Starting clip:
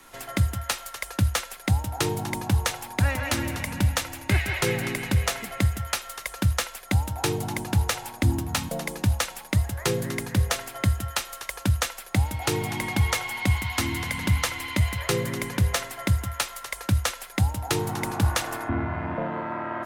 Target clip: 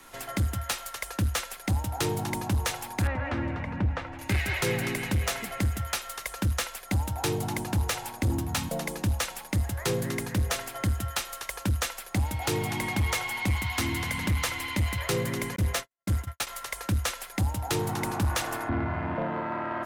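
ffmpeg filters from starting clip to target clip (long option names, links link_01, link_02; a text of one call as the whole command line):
ffmpeg -i in.wav -filter_complex "[0:a]asoftclip=type=tanh:threshold=-20.5dB,asettb=1/sr,asplit=3[link_01][link_02][link_03];[link_01]atrim=end=3.074[link_04];[link_02]atrim=start=3.07:end=4.19,asetpts=PTS-STARTPTS,afade=type=in:duration=0.004:curve=qsin,afade=type=out:start_time=1.116:duration=0.004:curve=qsin,lowpass=1700[link_05];[link_03]atrim=start=4.186[link_06];[link_04][link_05]acrossfade=duration=0.004:curve1=hsin:curve2=qsin[link_07];[link_07][link_06]acrossfade=duration=0.004:curve1=qsin:curve2=hsin,asettb=1/sr,asplit=3[link_08][link_09][link_10];[link_08]atrim=end=15.564[link_11];[link_09]atrim=start=15.56:end=16.47,asetpts=PTS-STARTPTS,afade=type=in:duration=0.004:curve=qsin,afade=type=out:start_time=0.906:duration=0.004:curve=qsin,agate=range=-59dB:threshold=-29dB:ratio=16:detection=peak[link_12];[link_10]atrim=start=16.466[link_13];[link_11][link_12]acrossfade=duration=0.004:curve1=hsin:curve2=qsin[link_14];[link_14][link_13]acrossfade=duration=0.004:curve1=qsin:curve2=hsin" out.wav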